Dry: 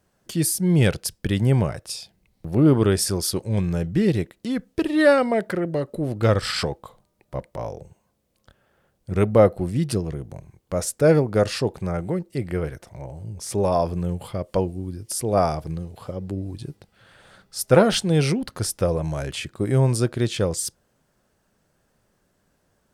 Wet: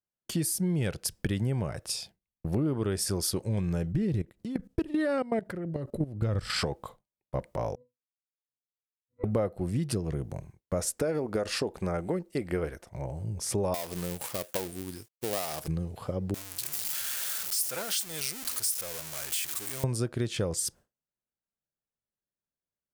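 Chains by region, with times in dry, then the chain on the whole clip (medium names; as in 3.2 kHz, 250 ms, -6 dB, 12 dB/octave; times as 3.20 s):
3.92–6.50 s: bass shelf 250 Hz +11.5 dB + level held to a coarse grid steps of 17 dB
7.75–9.24 s: peaking EQ 77 Hz -13.5 dB 2.1 oct + pitch-class resonator B, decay 0.62 s
10.91–12.86 s: compression, threshold -18 dBFS + transient shaper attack +2 dB, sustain -2 dB + peaking EQ 120 Hz -12 dB 0.8 oct
13.74–15.68 s: dead-time distortion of 0.18 ms + RIAA curve recording + compression 2:1, threshold -28 dBFS
16.34–19.84 s: jump at every zero crossing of -20.5 dBFS + pre-emphasis filter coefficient 0.97
whole clip: expander -41 dBFS; peaking EQ 3.8 kHz -2 dB; compression 6:1, threshold -26 dBFS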